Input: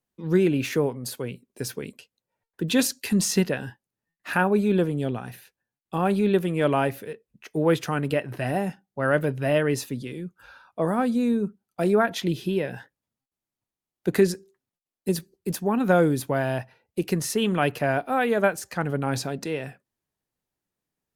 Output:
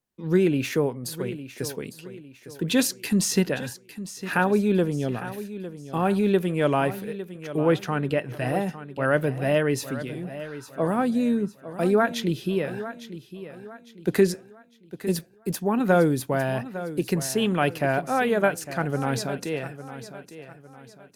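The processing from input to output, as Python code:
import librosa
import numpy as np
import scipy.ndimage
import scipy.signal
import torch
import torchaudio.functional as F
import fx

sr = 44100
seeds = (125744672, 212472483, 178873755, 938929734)

y = fx.high_shelf(x, sr, hz=6900.0, db=-11.0, at=(7.6, 8.18))
y = fx.echo_feedback(y, sr, ms=855, feedback_pct=38, wet_db=-13.5)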